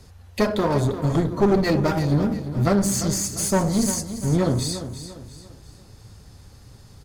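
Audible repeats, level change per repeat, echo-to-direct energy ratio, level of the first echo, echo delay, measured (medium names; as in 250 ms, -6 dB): 3, -8.0 dB, -11.0 dB, -11.5 dB, 346 ms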